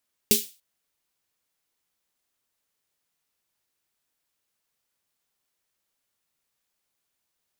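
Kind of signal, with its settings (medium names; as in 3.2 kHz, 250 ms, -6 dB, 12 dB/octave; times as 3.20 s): snare drum length 0.29 s, tones 220 Hz, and 410 Hz, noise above 2.8 kHz, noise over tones 4 dB, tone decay 0.19 s, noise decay 0.33 s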